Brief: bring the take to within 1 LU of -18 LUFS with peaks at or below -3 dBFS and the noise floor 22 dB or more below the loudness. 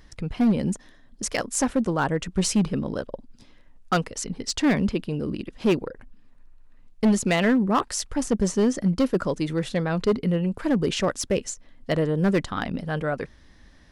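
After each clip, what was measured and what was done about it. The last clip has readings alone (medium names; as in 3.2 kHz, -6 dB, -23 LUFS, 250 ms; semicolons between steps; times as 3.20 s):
clipped samples 1.6%; clipping level -15.0 dBFS; loudness -25.0 LUFS; peak level -15.0 dBFS; loudness target -18.0 LUFS
-> clip repair -15 dBFS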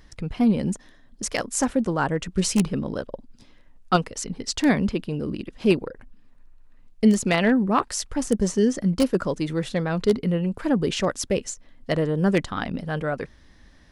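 clipped samples 0.0%; loudness -24.0 LUFS; peak level -6.0 dBFS; loudness target -18.0 LUFS
-> trim +6 dB; peak limiter -3 dBFS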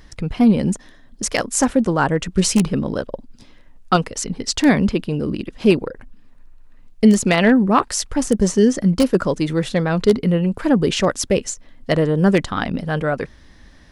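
loudness -18.5 LUFS; peak level -3.0 dBFS; noise floor -47 dBFS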